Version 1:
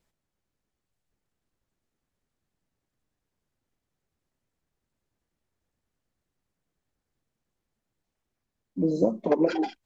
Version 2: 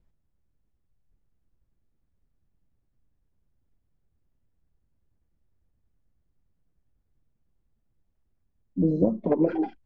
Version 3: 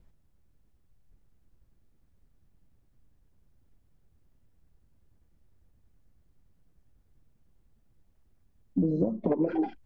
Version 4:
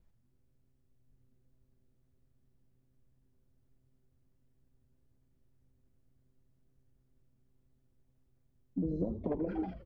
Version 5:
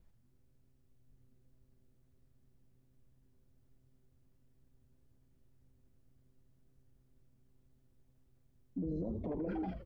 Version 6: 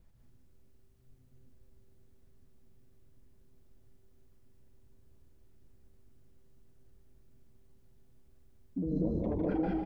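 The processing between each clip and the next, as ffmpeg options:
-filter_complex "[0:a]acrossover=split=2700[a][b];[b]acompressor=threshold=-57dB:ratio=4:attack=1:release=60[c];[a][c]amix=inputs=2:normalize=0,aemphasis=mode=reproduction:type=riaa,volume=-4dB"
-af "acompressor=threshold=-31dB:ratio=8,volume=7.5dB"
-filter_complex "[0:a]asplit=6[a][b][c][d][e][f];[b]adelay=82,afreqshift=-130,volume=-9dB[g];[c]adelay=164,afreqshift=-260,volume=-15.4dB[h];[d]adelay=246,afreqshift=-390,volume=-21.8dB[i];[e]adelay=328,afreqshift=-520,volume=-28.1dB[j];[f]adelay=410,afreqshift=-650,volume=-34.5dB[k];[a][g][h][i][j][k]amix=inputs=6:normalize=0,volume=-8dB"
-af "alimiter=level_in=9.5dB:limit=-24dB:level=0:latency=1:release=36,volume=-9.5dB,volume=2.5dB"
-af "aecho=1:1:151.6|195.3:0.631|0.708,volume=3.5dB"

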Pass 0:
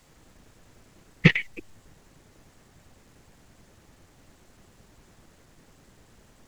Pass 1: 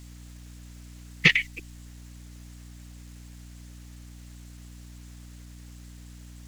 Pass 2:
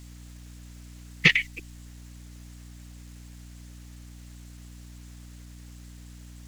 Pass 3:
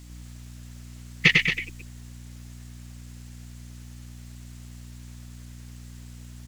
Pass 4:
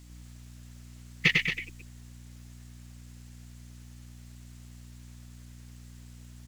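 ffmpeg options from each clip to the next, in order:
-af "tiltshelf=f=1.4k:g=-9,aeval=exprs='val(0)+0.00631*(sin(2*PI*60*n/s)+sin(2*PI*2*60*n/s)/2+sin(2*PI*3*60*n/s)/3+sin(2*PI*4*60*n/s)/4+sin(2*PI*5*60*n/s)/5)':c=same"
-af anull
-af "aecho=1:1:99.13|224.5:0.631|0.398"
-af "acrusher=bits=9:mode=log:mix=0:aa=0.000001,volume=-5.5dB"

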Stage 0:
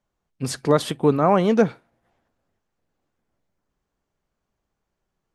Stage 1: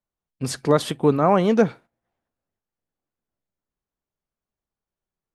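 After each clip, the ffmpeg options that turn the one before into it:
-af "agate=range=-12dB:threshold=-42dB:ratio=16:detection=peak"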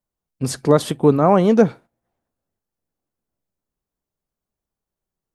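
-af "equalizer=f=2.4k:t=o:w=2.4:g=-5.5,volume=4.5dB"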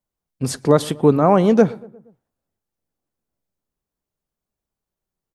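-filter_complex "[0:a]asplit=2[a][b];[b]adelay=118,lowpass=f=1.5k:p=1,volume=-21dB,asplit=2[c][d];[d]adelay=118,lowpass=f=1.5k:p=1,volume=0.54,asplit=2[e][f];[f]adelay=118,lowpass=f=1.5k:p=1,volume=0.54,asplit=2[g][h];[h]adelay=118,lowpass=f=1.5k:p=1,volume=0.54[i];[a][c][e][g][i]amix=inputs=5:normalize=0"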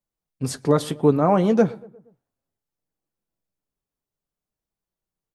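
-af "flanger=delay=5.8:depth=1.7:regen=-55:speed=0.62:shape=triangular"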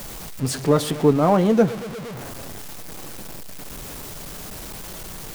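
-af "aeval=exprs='val(0)+0.5*0.0422*sgn(val(0))':c=same"

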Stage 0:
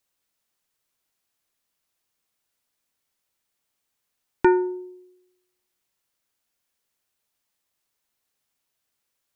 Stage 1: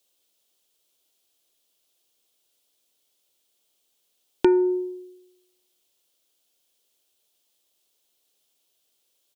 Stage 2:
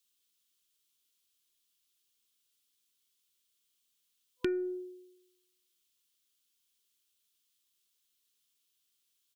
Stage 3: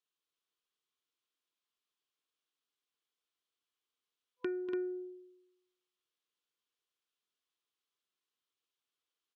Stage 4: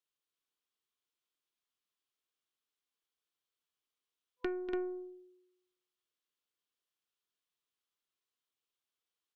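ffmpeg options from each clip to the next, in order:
-af "acompressor=threshold=-24dB:ratio=3,firequalizer=gain_entry='entry(140,0);entry(360,12);entry(580,11);entry(940,3);entry(1900,0);entry(3200,15);entry(4600,11)':delay=0.05:min_phase=1,volume=-3.5dB"
-af "afftfilt=real='re*(1-between(b*sr/4096,500,1000))':imag='im*(1-between(b*sr/4096,500,1000))':win_size=4096:overlap=0.75,equalizer=f=460:t=o:w=1.5:g=-9.5,aeval=exprs='0.355*(cos(1*acos(clip(val(0)/0.355,-1,1)))-cos(1*PI/2))+0.00794*(cos(4*acos(clip(val(0)/0.355,-1,1)))-cos(4*PI/2))':c=same,volume=-6dB"
-af "bandpass=f=790:t=q:w=1:csg=0,aecho=1:1:242|288.6:0.316|0.562,volume=1dB"
-af "aeval=exprs='0.0596*(cos(1*acos(clip(val(0)/0.0596,-1,1)))-cos(1*PI/2))+0.0168*(cos(2*acos(clip(val(0)/0.0596,-1,1)))-cos(2*PI/2))+0.00188*(cos(7*acos(clip(val(0)/0.0596,-1,1)))-cos(7*PI/2))':c=same"

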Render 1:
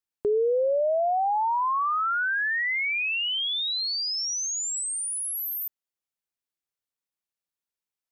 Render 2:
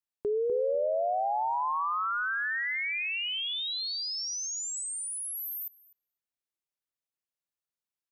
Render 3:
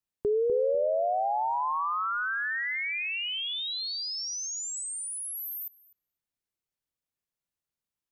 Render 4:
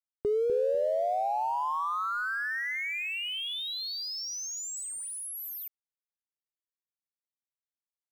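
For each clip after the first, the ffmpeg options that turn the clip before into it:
-filter_complex "[0:a]asplit=2[a][b];[b]adelay=249,lowpass=f=1.6k:p=1,volume=-6dB,asplit=2[c][d];[d]adelay=249,lowpass=f=1.6k:p=1,volume=0.23,asplit=2[e][f];[f]adelay=249,lowpass=f=1.6k:p=1,volume=0.23[g];[a][c][e][g]amix=inputs=4:normalize=0,volume=-5.5dB"
-af "lowshelf=f=280:g=9.5"
-af "aeval=exprs='sgn(val(0))*max(abs(val(0))-0.00251,0)':c=same,volume=-1dB"

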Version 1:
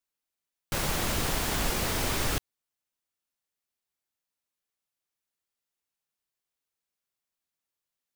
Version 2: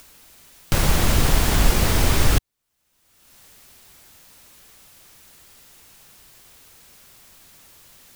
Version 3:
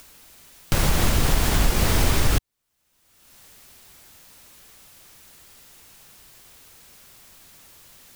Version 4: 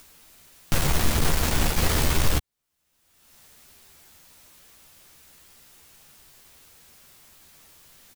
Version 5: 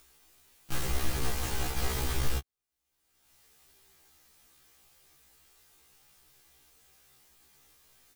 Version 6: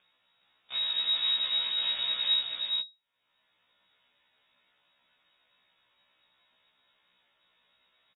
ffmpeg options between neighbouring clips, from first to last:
-filter_complex "[0:a]lowshelf=f=150:g=10,asplit=2[a][b];[b]acompressor=mode=upward:threshold=-22dB:ratio=2.5,volume=1dB[c];[a][c]amix=inputs=2:normalize=0"
-af "alimiter=limit=-8.5dB:level=0:latency=1:release=166"
-filter_complex "[0:a]aeval=exprs='0.398*(cos(1*acos(clip(val(0)/0.398,-1,1)))-cos(1*PI/2))+0.0447*(cos(6*acos(clip(val(0)/0.398,-1,1)))-cos(6*PI/2))+0.0891*(cos(8*acos(clip(val(0)/0.398,-1,1)))-cos(8*PI/2))':c=same,asplit=2[a][b];[b]adelay=13,volume=-7dB[c];[a][c]amix=inputs=2:normalize=0,volume=-4dB"
-af "afftfilt=real='re*1.73*eq(mod(b,3),0)':imag='im*1.73*eq(mod(b,3),0)':win_size=2048:overlap=0.75,volume=-7dB"
-filter_complex "[0:a]lowpass=f=3.2k:t=q:w=0.5098,lowpass=f=3.2k:t=q:w=0.6013,lowpass=f=3.2k:t=q:w=0.9,lowpass=f=3.2k:t=q:w=2.563,afreqshift=-3800,asplit=2[a][b];[b]aecho=0:1:416:0.708[c];[a][c]amix=inputs=2:normalize=0,volume=-3.5dB"

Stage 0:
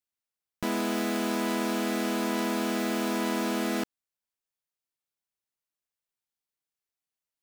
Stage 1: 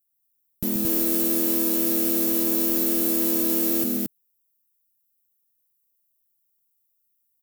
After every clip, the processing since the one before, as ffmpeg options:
-filter_complex "[0:a]firequalizer=gain_entry='entry(160,0);entry(880,-23);entry(3100,-13);entry(14000,14)':delay=0.05:min_phase=1,asplit=2[a][b];[b]aecho=0:1:131.2|224.5:0.447|0.891[c];[a][c]amix=inputs=2:normalize=0,volume=6.5dB"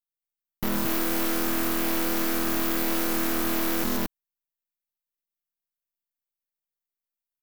-af "asoftclip=type=tanh:threshold=-20.5dB,aeval=exprs='0.0944*(cos(1*acos(clip(val(0)/0.0944,-1,1)))-cos(1*PI/2))+0.0376*(cos(6*acos(clip(val(0)/0.0944,-1,1)))-cos(6*PI/2))+0.015*(cos(7*acos(clip(val(0)/0.0944,-1,1)))-cos(7*PI/2))':c=same,volume=-1.5dB"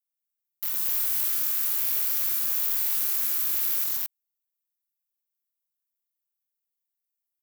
-af "aderivative,volume=1dB"

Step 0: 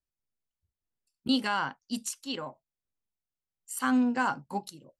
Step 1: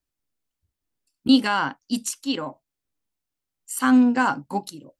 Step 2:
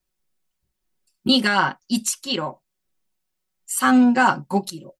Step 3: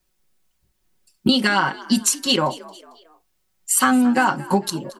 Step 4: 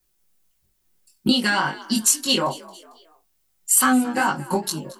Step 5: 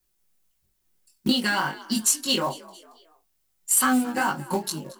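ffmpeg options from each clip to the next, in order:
-af "equalizer=f=290:w=5.7:g=9,volume=6.5dB"
-af "aecho=1:1:5.4:0.93,volume=2.5dB"
-filter_complex "[0:a]acompressor=threshold=-22dB:ratio=12,asplit=4[a][b][c][d];[b]adelay=225,afreqshift=52,volume=-20dB[e];[c]adelay=450,afreqshift=104,volume=-26.7dB[f];[d]adelay=675,afreqshift=156,volume=-33.5dB[g];[a][e][f][g]amix=inputs=4:normalize=0,volume=8.5dB"
-af "flanger=delay=19.5:depth=3.8:speed=2.3,crystalizer=i=1:c=0"
-af "acrusher=bits=5:mode=log:mix=0:aa=0.000001,volume=-3.5dB"

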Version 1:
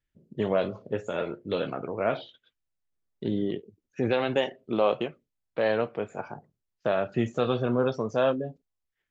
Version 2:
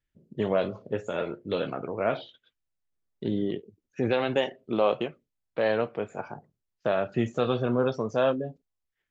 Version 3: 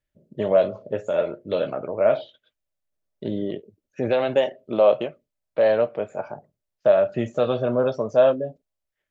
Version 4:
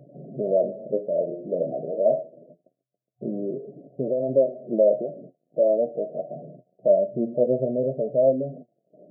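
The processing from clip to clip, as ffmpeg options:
-af anull
-af "equalizer=f=610:w=3.8:g=13.5,bandreject=f=690:w=17"
-af "aeval=exprs='val(0)+0.5*0.0237*sgn(val(0))':c=same,flanger=delay=7:depth=5.6:regen=48:speed=0.25:shape=sinusoidal,afftfilt=real='re*between(b*sr/4096,120,730)':imag='im*between(b*sr/4096,120,730)':win_size=4096:overlap=0.75,volume=2dB"

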